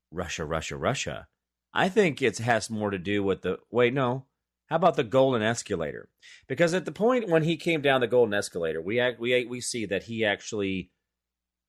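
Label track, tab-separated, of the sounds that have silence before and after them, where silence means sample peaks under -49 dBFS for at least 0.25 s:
1.740000	4.210000	sound
4.700000	10.850000	sound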